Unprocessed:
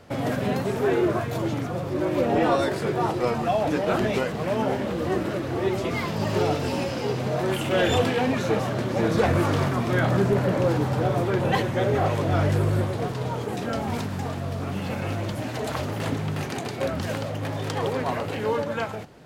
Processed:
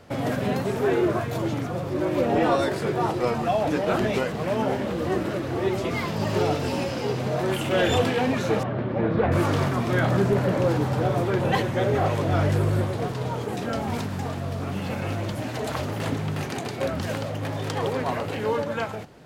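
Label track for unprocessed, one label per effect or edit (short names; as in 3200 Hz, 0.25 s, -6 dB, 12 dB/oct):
8.630000	9.320000	air absorption 450 m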